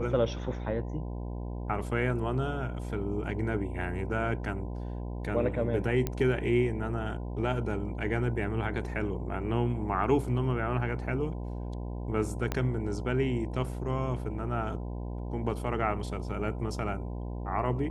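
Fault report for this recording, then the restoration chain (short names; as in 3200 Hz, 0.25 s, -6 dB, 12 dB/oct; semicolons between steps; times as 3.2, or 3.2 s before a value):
buzz 60 Hz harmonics 17 -36 dBFS
6.07 pop -16 dBFS
12.52 pop -15 dBFS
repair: de-click; de-hum 60 Hz, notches 17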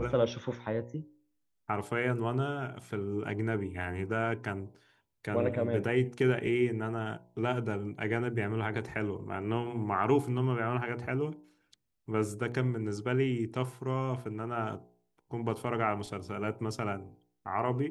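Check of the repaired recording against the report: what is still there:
12.52 pop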